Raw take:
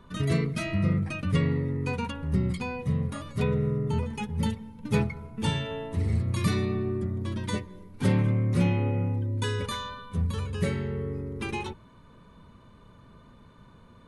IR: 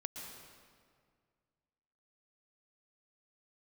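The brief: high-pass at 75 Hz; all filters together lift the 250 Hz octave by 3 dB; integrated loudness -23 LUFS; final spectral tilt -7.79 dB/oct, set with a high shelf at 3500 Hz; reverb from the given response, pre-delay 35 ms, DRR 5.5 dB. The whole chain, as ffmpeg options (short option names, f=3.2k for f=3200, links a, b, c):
-filter_complex "[0:a]highpass=75,equalizer=f=250:t=o:g=4.5,highshelf=f=3.5k:g=-6.5,asplit=2[a][b];[1:a]atrim=start_sample=2205,adelay=35[c];[b][c]afir=irnorm=-1:irlink=0,volume=-4dB[d];[a][d]amix=inputs=2:normalize=0,volume=3.5dB"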